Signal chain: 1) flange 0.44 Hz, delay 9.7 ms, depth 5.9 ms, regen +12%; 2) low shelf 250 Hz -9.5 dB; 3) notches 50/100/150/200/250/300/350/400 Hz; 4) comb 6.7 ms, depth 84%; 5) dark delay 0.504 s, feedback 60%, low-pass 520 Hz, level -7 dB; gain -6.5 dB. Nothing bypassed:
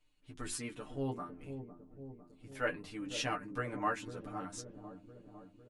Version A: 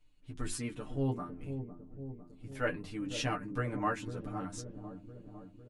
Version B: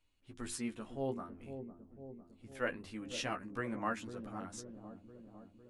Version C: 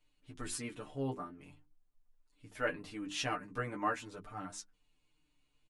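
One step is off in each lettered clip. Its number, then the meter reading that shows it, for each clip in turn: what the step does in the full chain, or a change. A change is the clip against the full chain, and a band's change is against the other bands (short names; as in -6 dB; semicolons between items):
2, 125 Hz band +7.0 dB; 4, 250 Hz band +3.0 dB; 5, echo-to-direct -15.5 dB to none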